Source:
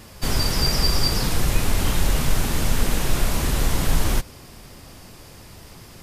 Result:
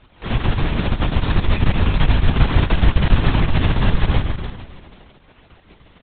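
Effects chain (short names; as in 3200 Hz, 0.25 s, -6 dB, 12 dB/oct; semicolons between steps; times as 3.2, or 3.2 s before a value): crossover distortion -44.5 dBFS; vocal rider 0.5 s; half-wave rectifier; feedback echo 0.146 s, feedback 49%, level -3 dB; LPC vocoder at 8 kHz whisper; gain +2.5 dB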